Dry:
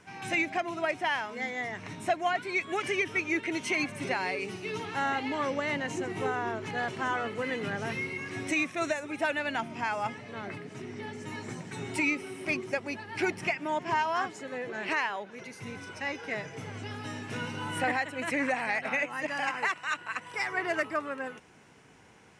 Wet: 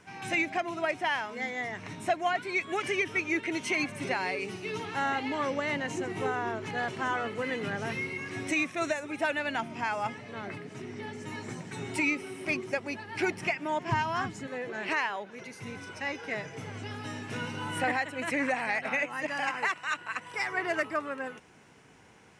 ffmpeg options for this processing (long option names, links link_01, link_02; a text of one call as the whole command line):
ffmpeg -i in.wav -filter_complex "[0:a]asplit=3[link_01][link_02][link_03];[link_01]afade=type=out:start_time=13.9:duration=0.02[link_04];[link_02]asubboost=boost=7.5:cutoff=170,afade=type=in:start_time=13.9:duration=0.02,afade=type=out:start_time=14.46:duration=0.02[link_05];[link_03]afade=type=in:start_time=14.46:duration=0.02[link_06];[link_04][link_05][link_06]amix=inputs=3:normalize=0" out.wav